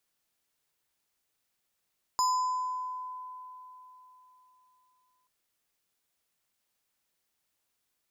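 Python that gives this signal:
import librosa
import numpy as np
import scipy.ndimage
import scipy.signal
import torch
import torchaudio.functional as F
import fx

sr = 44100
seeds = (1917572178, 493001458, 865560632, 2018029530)

y = fx.fm2(sr, length_s=3.08, level_db=-22.5, carrier_hz=1010.0, ratio=6.0, index=0.66, index_s=1.36, decay_s=3.67, shape='exponential')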